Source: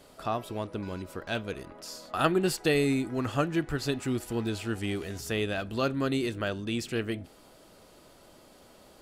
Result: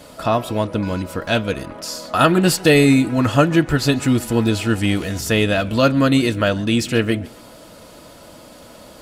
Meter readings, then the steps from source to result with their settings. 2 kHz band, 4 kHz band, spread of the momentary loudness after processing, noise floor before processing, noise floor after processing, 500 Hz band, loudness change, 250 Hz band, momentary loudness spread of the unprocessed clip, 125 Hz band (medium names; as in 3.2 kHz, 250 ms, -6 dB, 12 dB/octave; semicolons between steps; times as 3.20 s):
+13.0 dB, +13.0 dB, 10 LU, -56 dBFS, -43 dBFS, +11.5 dB, +13.0 dB, +13.5 dB, 12 LU, +14.0 dB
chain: comb of notches 390 Hz; loudness maximiser +15.5 dB; modulated delay 136 ms, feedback 35%, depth 177 cents, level -23 dB; trim -1 dB